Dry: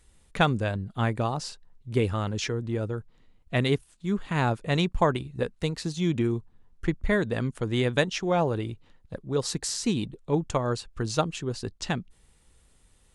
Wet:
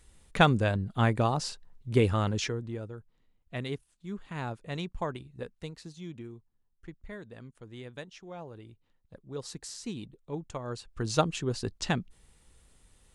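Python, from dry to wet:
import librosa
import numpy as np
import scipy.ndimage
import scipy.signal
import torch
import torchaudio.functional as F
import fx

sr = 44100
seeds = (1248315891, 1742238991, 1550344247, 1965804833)

y = fx.gain(x, sr, db=fx.line((2.3, 1.0), (2.9, -11.0), (5.54, -11.0), (6.36, -19.0), (8.46, -19.0), (9.37, -11.5), (10.59, -11.5), (11.18, 0.0)))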